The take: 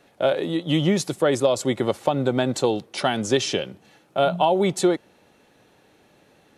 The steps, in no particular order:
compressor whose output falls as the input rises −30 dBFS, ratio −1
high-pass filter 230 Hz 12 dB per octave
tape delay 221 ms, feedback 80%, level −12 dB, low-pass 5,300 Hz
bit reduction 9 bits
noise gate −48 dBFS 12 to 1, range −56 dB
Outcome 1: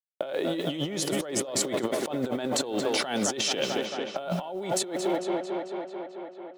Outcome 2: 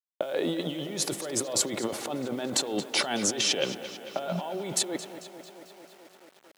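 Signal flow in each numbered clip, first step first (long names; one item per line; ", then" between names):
noise gate, then high-pass filter, then bit reduction, then tape delay, then compressor whose output falls as the input rises
noise gate, then compressor whose output falls as the input rises, then tape delay, then bit reduction, then high-pass filter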